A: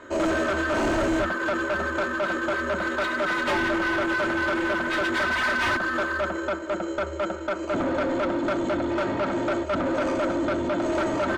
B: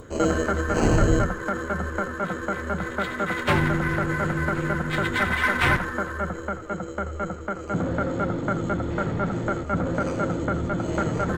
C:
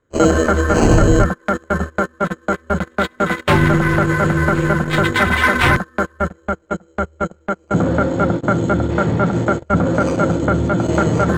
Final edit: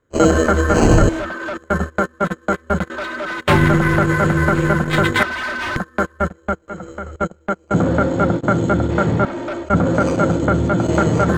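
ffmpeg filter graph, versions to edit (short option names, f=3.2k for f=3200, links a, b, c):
-filter_complex "[0:a]asplit=4[a][b][c][d];[2:a]asplit=6[e][f][g][h][i][j];[e]atrim=end=1.092[k];[a]atrim=start=1.088:end=1.572[l];[f]atrim=start=1.568:end=2.902[m];[b]atrim=start=2.898:end=3.402[n];[g]atrim=start=3.398:end=5.232[o];[c]atrim=start=5.228:end=5.762[p];[h]atrim=start=5.758:end=6.682[q];[1:a]atrim=start=6.678:end=7.162[r];[i]atrim=start=7.158:end=9.252[s];[d]atrim=start=9.248:end=9.692[t];[j]atrim=start=9.688[u];[k][l]acrossfade=d=0.004:c1=hsin:c2=hsin[v];[v][m]acrossfade=d=0.004:c1=hsin:c2=hsin[w];[w][n]acrossfade=d=0.004:c1=hsin:c2=hsin[x];[x][o]acrossfade=d=0.004:c1=hsin:c2=hsin[y];[y][p]acrossfade=d=0.004:c1=hsin:c2=hsin[z];[z][q]acrossfade=d=0.004:c1=hsin:c2=hsin[aa];[aa][r]acrossfade=d=0.004:c1=hsin:c2=hsin[ab];[ab][s]acrossfade=d=0.004:c1=hsin:c2=hsin[ac];[ac][t]acrossfade=d=0.004:c1=hsin:c2=hsin[ad];[ad][u]acrossfade=d=0.004:c1=hsin:c2=hsin"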